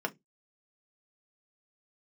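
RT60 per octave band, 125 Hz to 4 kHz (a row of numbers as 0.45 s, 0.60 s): 0.30 s, 0.25 s, 0.20 s, 0.10 s, 0.15 s, 0.15 s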